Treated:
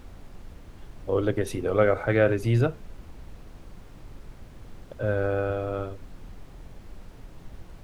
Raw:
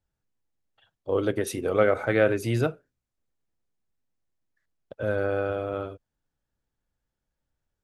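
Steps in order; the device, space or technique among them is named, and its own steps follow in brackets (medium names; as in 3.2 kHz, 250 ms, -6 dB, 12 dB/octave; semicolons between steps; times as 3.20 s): car interior (peaking EQ 110 Hz +5.5 dB; treble shelf 4.9 kHz -7.5 dB; brown noise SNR 12 dB)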